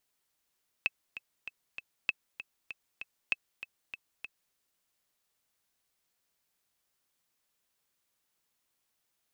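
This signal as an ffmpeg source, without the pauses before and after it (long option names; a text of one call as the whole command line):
ffmpeg -f lavfi -i "aevalsrc='pow(10,(-14-13*gte(mod(t,4*60/195),60/195))/20)*sin(2*PI*2610*mod(t,60/195))*exp(-6.91*mod(t,60/195)/0.03)':duration=3.69:sample_rate=44100" out.wav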